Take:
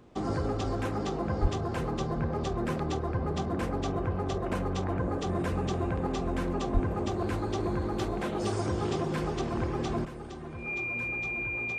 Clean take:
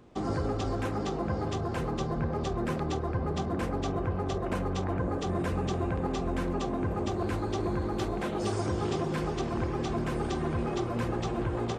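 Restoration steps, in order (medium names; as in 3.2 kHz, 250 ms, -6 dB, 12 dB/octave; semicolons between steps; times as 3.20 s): band-stop 2.4 kHz, Q 30; de-plosive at 1.41/6.73 s; gain correction +10.5 dB, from 10.05 s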